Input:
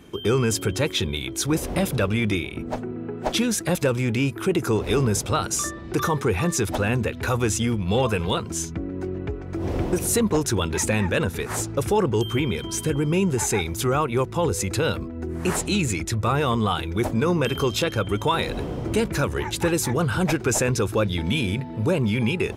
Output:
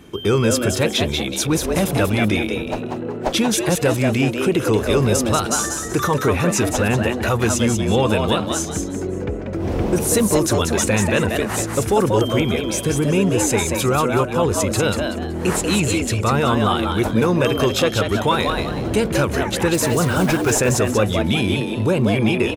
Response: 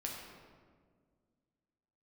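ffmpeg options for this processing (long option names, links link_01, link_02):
-filter_complex "[0:a]asettb=1/sr,asplit=3[link_01][link_02][link_03];[link_01]atrim=end=19.744[link_04];[link_02]atrim=start=19.74:end=20.6,asetpts=PTS-STARTPTS,afade=type=in:duration=0.004:curve=qsin,afade=type=out:start_time=0.856:duration=0.004:curve=qsin,acrusher=bits=5:mode=log:mix=0:aa=0.000001[link_05];[link_03]atrim=start=20.596[link_06];[link_04][link_05]acrossfade=duration=0.004:curve1=hsin:curve2=qsin[link_07];[link_07][link_06]acrossfade=duration=0.004:curve1=qsin:curve2=hsin,asplit=5[link_08][link_09][link_10][link_11][link_12];[link_09]adelay=188,afreqshift=120,volume=-5dB[link_13];[link_10]adelay=376,afreqshift=240,volume=-15.2dB[link_14];[link_11]adelay=564,afreqshift=360,volume=-25.3dB[link_15];[link_12]adelay=752,afreqshift=480,volume=-35.5dB[link_16];[link_08][link_13][link_14][link_15][link_16]amix=inputs=5:normalize=0,volume=3.5dB"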